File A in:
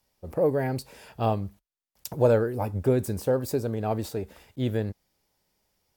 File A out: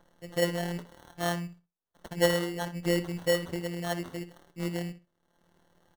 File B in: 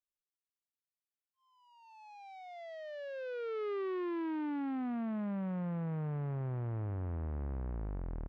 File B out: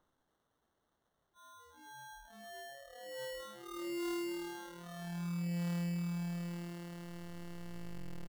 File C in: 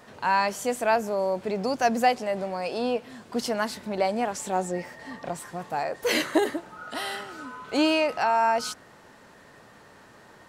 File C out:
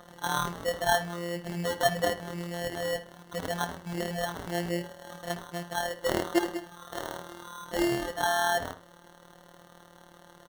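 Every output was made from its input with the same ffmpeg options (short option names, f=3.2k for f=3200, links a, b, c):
-filter_complex "[0:a]afftfilt=real='hypot(re,im)*cos(PI*b)':imag='0':win_size=1024:overlap=0.75,acompressor=mode=upward:threshold=-46dB:ratio=2.5,acrusher=samples=18:mix=1:aa=0.000001,asplit=2[a][b];[b]adelay=63,lowpass=f=4.1k:p=1,volume=-12dB,asplit=2[c][d];[d]adelay=63,lowpass=f=4.1k:p=1,volume=0.2,asplit=2[e][f];[f]adelay=63,lowpass=f=4.1k:p=1,volume=0.2[g];[c][e][g]amix=inputs=3:normalize=0[h];[a][h]amix=inputs=2:normalize=0,adynamicequalizer=threshold=0.00891:dfrequency=2300:dqfactor=0.7:tfrequency=2300:tqfactor=0.7:attack=5:release=100:ratio=0.375:range=2:mode=cutabove:tftype=highshelf"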